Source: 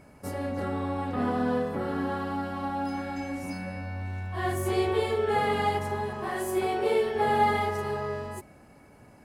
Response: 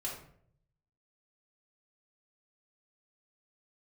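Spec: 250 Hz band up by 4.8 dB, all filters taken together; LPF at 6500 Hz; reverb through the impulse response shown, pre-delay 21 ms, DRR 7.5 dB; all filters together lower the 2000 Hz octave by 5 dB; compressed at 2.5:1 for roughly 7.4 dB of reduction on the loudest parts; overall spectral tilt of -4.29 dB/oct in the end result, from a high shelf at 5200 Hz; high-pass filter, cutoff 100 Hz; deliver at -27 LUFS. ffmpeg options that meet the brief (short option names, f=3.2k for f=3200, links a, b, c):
-filter_complex "[0:a]highpass=100,lowpass=6.5k,equalizer=f=250:t=o:g=6,equalizer=f=2k:t=o:g=-5.5,highshelf=f=5.2k:g=-4.5,acompressor=threshold=-31dB:ratio=2.5,asplit=2[a][b];[1:a]atrim=start_sample=2205,adelay=21[c];[b][c]afir=irnorm=-1:irlink=0,volume=-8.5dB[d];[a][d]amix=inputs=2:normalize=0,volume=5.5dB"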